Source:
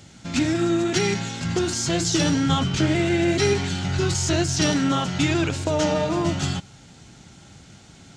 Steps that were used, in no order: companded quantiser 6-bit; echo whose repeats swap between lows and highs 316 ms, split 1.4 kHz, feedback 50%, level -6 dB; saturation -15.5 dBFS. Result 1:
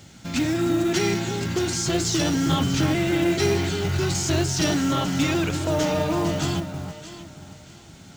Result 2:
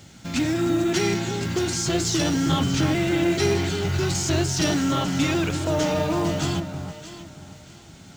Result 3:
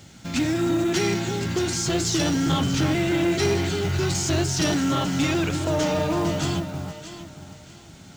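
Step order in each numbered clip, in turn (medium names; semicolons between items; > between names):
saturation > echo whose repeats swap between lows and highs > companded quantiser; companded quantiser > saturation > echo whose repeats swap between lows and highs; echo whose repeats swap between lows and highs > companded quantiser > saturation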